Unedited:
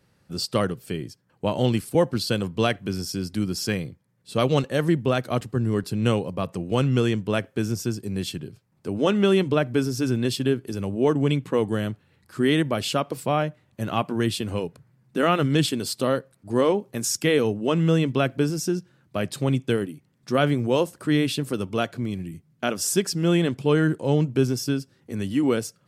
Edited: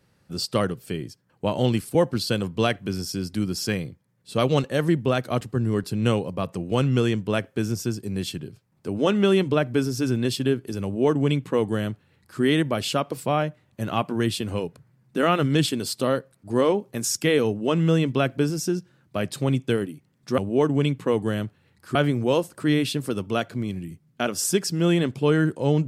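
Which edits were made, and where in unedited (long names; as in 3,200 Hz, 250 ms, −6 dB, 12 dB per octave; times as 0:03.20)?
0:10.84–0:12.41: duplicate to 0:20.38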